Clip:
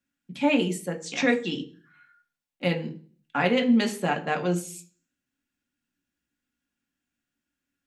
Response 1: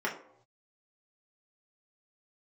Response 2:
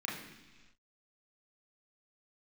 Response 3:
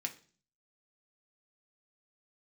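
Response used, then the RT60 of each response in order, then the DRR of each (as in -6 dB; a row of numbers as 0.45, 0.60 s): 3; 0.75 s, not exponential, 0.40 s; -4.0, -4.5, 3.0 dB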